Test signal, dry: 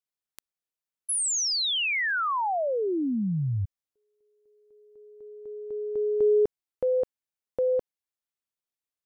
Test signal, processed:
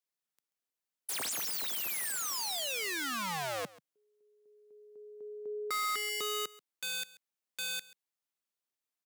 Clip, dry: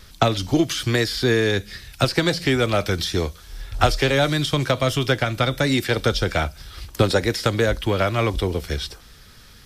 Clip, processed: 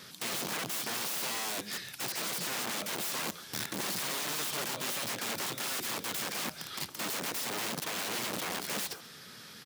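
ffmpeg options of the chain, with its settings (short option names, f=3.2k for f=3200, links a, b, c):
-filter_complex "[0:a]acompressor=threshold=-21dB:ratio=10:attack=0.28:release=119:knee=6:detection=rms,aeval=exprs='(mod(31.6*val(0)+1,2)-1)/31.6':c=same,highpass=f=150:w=0.5412,highpass=f=150:w=1.3066,asplit=2[a][b];[b]aecho=0:1:135:0.0944[c];[a][c]amix=inputs=2:normalize=0"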